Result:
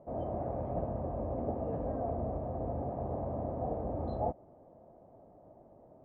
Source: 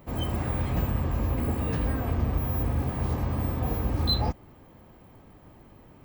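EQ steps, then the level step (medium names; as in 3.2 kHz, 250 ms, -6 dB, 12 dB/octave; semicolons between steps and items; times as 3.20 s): resonant low-pass 650 Hz, resonance Q 4.9; bass shelf 100 Hz -9.5 dB; -7.5 dB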